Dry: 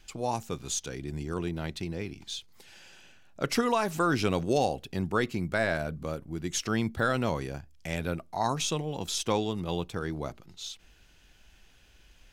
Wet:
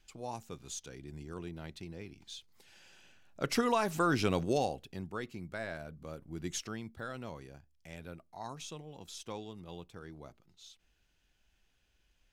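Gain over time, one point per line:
2.11 s -10.5 dB
3.68 s -3 dB
4.43 s -3 dB
5.13 s -12.5 dB
5.97 s -12.5 dB
6.49 s -4.5 dB
6.8 s -15 dB

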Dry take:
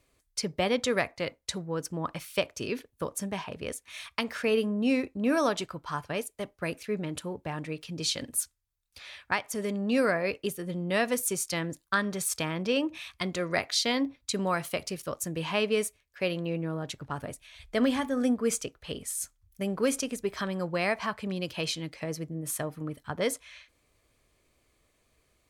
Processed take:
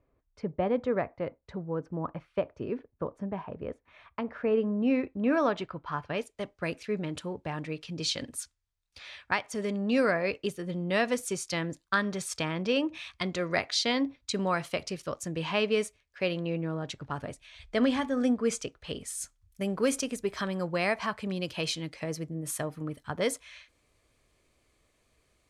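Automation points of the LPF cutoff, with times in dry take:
4.35 s 1100 Hz
5.16 s 2600 Hz
5.9 s 2600 Hz
6.44 s 6500 Hz
18.52 s 6500 Hz
19.64 s 11000 Hz

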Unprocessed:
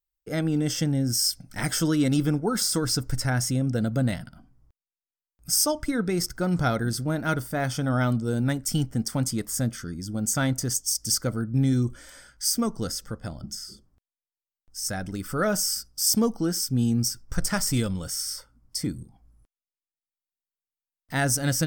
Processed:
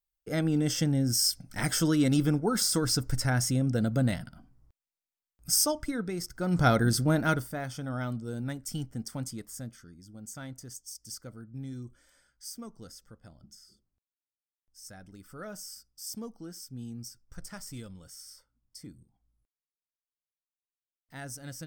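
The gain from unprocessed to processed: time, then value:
5.54 s -2 dB
6.27 s -10 dB
6.68 s +2 dB
7.2 s +2 dB
7.65 s -10 dB
9.21 s -10 dB
9.96 s -17.5 dB

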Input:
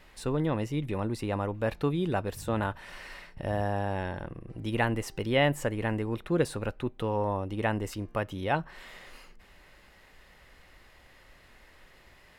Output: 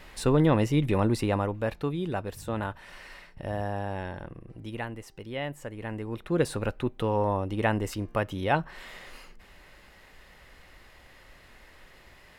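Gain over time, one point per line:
1.14 s +7 dB
1.8 s -2 dB
4.44 s -2 dB
4.92 s -9.5 dB
5.6 s -9.5 dB
6.54 s +3 dB

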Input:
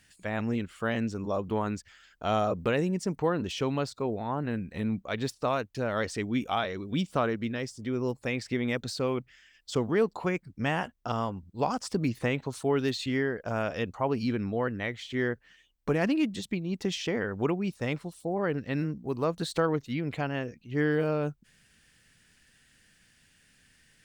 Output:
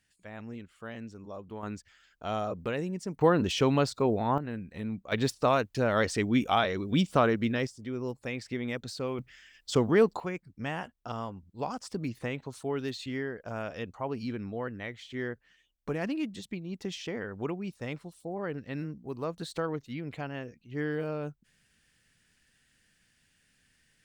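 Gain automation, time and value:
-12 dB
from 1.63 s -5.5 dB
from 3.21 s +4.5 dB
from 4.38 s -5 dB
from 5.12 s +3.5 dB
from 7.67 s -4.5 dB
from 9.19 s +3 dB
from 10.2 s -6 dB

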